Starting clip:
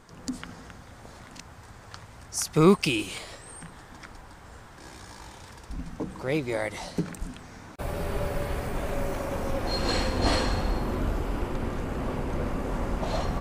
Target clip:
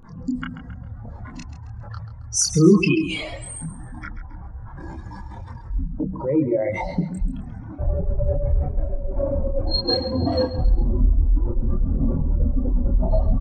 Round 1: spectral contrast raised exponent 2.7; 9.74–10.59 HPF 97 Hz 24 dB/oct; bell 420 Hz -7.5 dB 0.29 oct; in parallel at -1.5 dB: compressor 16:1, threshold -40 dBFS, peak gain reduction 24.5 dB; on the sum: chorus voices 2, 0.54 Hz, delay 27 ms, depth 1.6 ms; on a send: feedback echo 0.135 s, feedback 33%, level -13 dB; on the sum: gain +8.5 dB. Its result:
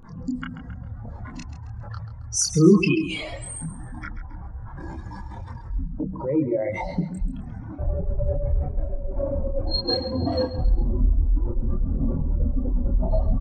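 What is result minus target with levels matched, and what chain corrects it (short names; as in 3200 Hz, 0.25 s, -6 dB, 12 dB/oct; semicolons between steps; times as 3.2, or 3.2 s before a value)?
compressor: peak gain reduction +11 dB
spectral contrast raised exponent 2.7; 9.74–10.59 HPF 97 Hz 24 dB/oct; bell 420 Hz -7.5 dB 0.29 oct; in parallel at -1.5 dB: compressor 16:1, threshold -28.5 dBFS, peak gain reduction 13.5 dB; on the sum: chorus voices 2, 0.54 Hz, delay 27 ms, depth 1.6 ms; on a send: feedback echo 0.135 s, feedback 33%, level -13 dB; on the sum: gain +8.5 dB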